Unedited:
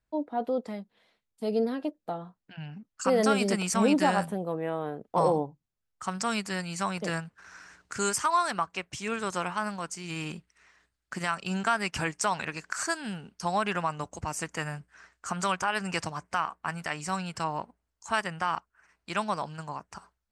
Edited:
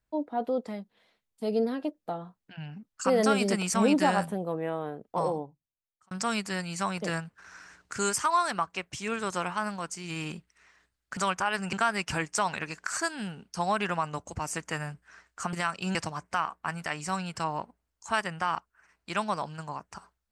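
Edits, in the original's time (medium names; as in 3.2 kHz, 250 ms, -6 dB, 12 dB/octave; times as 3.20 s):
4.63–6.11 s: fade out
11.17–11.59 s: swap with 15.39–15.95 s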